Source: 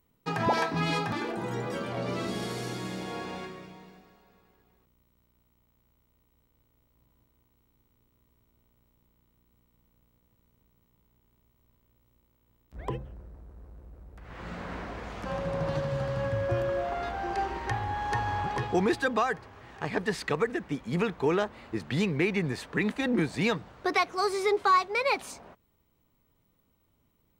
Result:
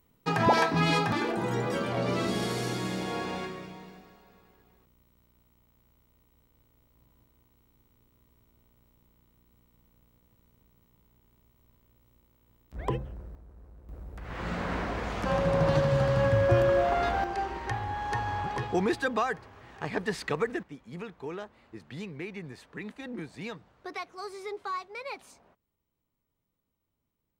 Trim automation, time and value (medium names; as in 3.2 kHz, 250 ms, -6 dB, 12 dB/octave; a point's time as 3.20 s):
+3.5 dB
from 13.35 s -3 dB
from 13.89 s +6 dB
from 17.24 s -1.5 dB
from 20.63 s -12 dB